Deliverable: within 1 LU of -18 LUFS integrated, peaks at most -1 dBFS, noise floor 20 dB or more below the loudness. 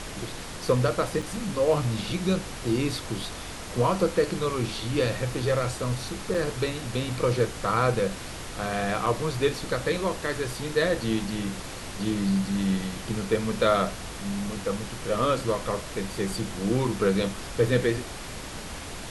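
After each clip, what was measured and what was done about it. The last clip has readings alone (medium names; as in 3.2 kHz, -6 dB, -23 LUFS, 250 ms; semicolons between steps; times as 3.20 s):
dropouts 3; longest dropout 4.9 ms; noise floor -38 dBFS; noise floor target -48 dBFS; loudness -27.5 LUFS; peak level -9.0 dBFS; loudness target -18.0 LUFS
-> interpolate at 1.22/6.34/9.06 s, 4.9 ms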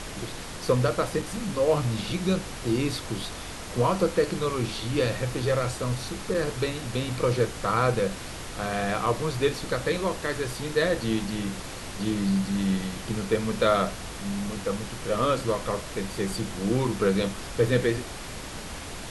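dropouts 0; noise floor -38 dBFS; noise floor target -48 dBFS
-> noise print and reduce 10 dB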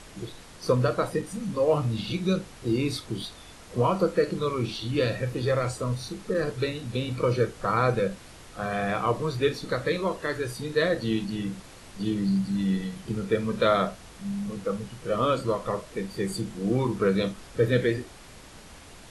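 noise floor -48 dBFS; loudness -27.5 LUFS; peak level -9.0 dBFS; loudness target -18.0 LUFS
-> trim +9.5 dB; peak limiter -1 dBFS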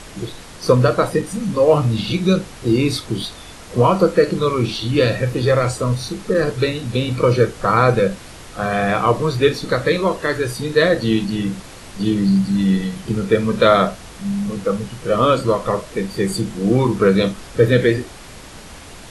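loudness -18.0 LUFS; peak level -1.0 dBFS; noise floor -38 dBFS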